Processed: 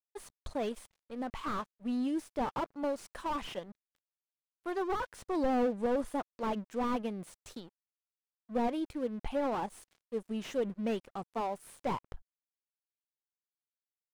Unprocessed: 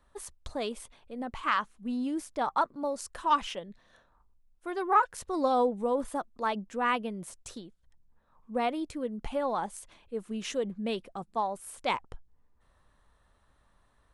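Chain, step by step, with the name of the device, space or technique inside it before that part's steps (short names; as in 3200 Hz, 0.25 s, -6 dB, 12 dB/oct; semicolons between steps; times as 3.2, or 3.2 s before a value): 8.79–9.52 bell 6800 Hz -9 dB 0.81 oct; early transistor amplifier (crossover distortion -52 dBFS; slew limiter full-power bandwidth 23 Hz)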